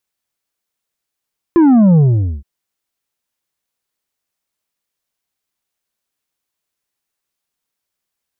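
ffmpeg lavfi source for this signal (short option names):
-f lavfi -i "aevalsrc='0.473*clip((0.87-t)/0.46,0,1)*tanh(2*sin(2*PI*350*0.87/log(65/350)*(exp(log(65/350)*t/0.87)-1)))/tanh(2)':d=0.87:s=44100"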